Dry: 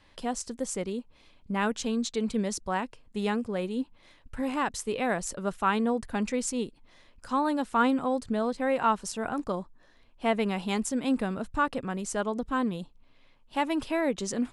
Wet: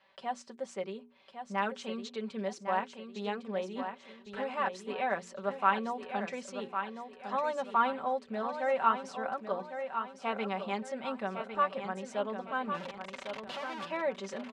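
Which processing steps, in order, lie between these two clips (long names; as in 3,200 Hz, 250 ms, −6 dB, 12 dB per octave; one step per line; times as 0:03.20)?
0:12.74–0:13.85: sign of each sample alone
low shelf with overshoot 430 Hz −6 dB, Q 1.5
mains-hum notches 60/120/180/240/300/360/420 Hz
comb filter 5.2 ms, depth 70%
0:03.77–0:04.44: leveller curve on the samples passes 2
band-pass filter 170–3,400 Hz
repeating echo 1,105 ms, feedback 38%, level −8 dB
level −5 dB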